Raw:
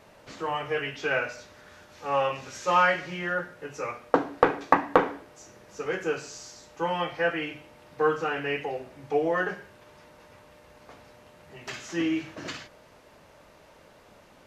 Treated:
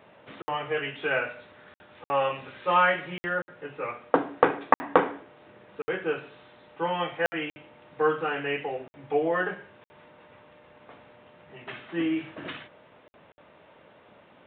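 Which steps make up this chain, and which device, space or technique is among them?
call with lost packets (HPF 110 Hz 12 dB/oct; downsampling 8000 Hz; packet loss packets of 60 ms random); 11.64–12.19 high shelf 3700 Hz -7 dB

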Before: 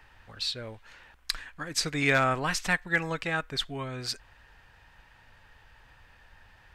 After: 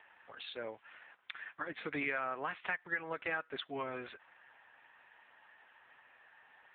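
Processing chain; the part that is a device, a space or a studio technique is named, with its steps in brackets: voicemail (BPF 350–3200 Hz; compressor 8:1, threshold -33 dBFS, peak gain reduction 13 dB; gain +1 dB; AMR-NB 6.7 kbps 8000 Hz)

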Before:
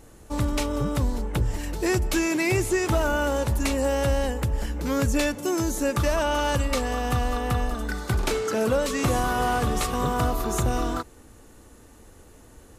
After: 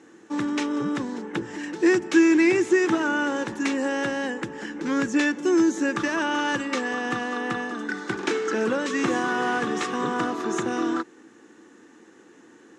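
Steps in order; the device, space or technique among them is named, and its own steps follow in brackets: television speaker (speaker cabinet 190–6700 Hz, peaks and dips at 330 Hz +9 dB, 620 Hz -10 dB, 1700 Hz +8 dB, 4500 Hz -6 dB)

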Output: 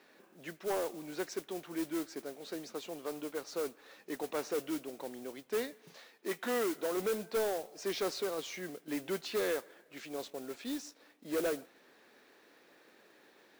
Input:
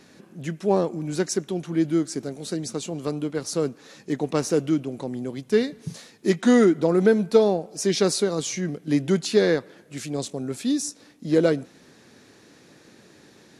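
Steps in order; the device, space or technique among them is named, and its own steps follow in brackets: carbon microphone (BPF 450–3300 Hz; soft clip -22 dBFS, distortion -10 dB; modulation noise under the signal 13 dB); 5.73–6.97 HPF 220 Hz 6 dB/oct; gain -6 dB

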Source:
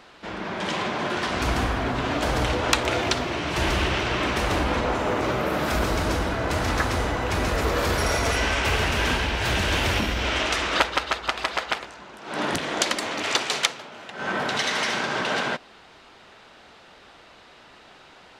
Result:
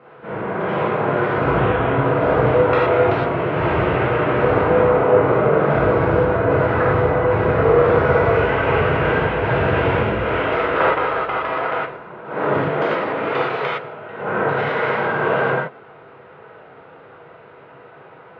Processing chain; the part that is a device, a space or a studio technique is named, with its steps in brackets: 1.56–1.97 resonant high shelf 4700 Hz -11.5 dB, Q 3; bass cabinet (speaker cabinet 89–2000 Hz, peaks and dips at 140 Hz +9 dB, 240 Hz -5 dB, 470 Hz +7 dB, 880 Hz -4 dB, 1800 Hz -6 dB); non-linear reverb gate 0.14 s flat, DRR -7.5 dB

